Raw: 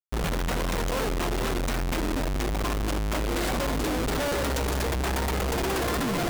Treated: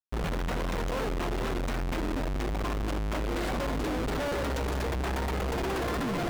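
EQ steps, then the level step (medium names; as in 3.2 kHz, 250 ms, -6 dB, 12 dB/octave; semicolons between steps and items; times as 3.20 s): treble shelf 4.8 kHz -9.5 dB; -3.0 dB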